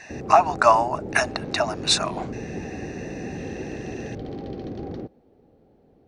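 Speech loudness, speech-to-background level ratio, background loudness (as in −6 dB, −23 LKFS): −21.0 LKFS, 13.0 dB, −34.0 LKFS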